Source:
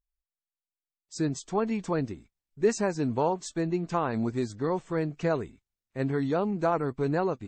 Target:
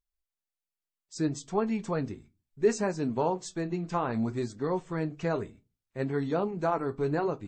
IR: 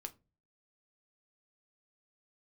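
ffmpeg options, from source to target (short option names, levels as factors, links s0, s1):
-filter_complex "[0:a]flanger=delay=4.2:depth=6.4:regen=-68:speed=0.65:shape=triangular,asplit=2[s0][s1];[1:a]atrim=start_sample=2205,afade=t=out:st=0.34:d=0.01,atrim=end_sample=15435[s2];[s1][s2]afir=irnorm=-1:irlink=0,volume=1.26[s3];[s0][s3]amix=inputs=2:normalize=0,volume=0.75"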